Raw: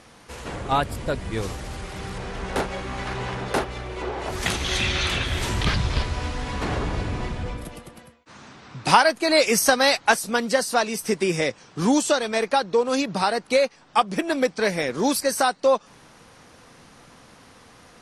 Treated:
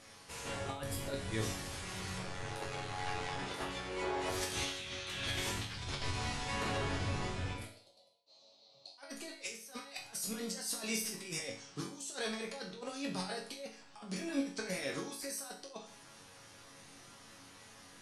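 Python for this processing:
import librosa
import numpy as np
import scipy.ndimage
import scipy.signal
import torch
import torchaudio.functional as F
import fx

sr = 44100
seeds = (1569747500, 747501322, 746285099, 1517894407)

y = fx.high_shelf(x, sr, hz=2400.0, db=8.0)
y = fx.over_compress(y, sr, threshold_db=-25.0, ratio=-0.5)
y = fx.ring_mod(y, sr, carrier_hz=46.0, at=(2.22, 3.37), fade=0.02)
y = fx.double_bandpass(y, sr, hz=1600.0, octaves=2.8, at=(7.65, 8.98))
y = fx.resonator_bank(y, sr, root=42, chord='minor', decay_s=0.45)
y = y * librosa.db_to_amplitude(1.0)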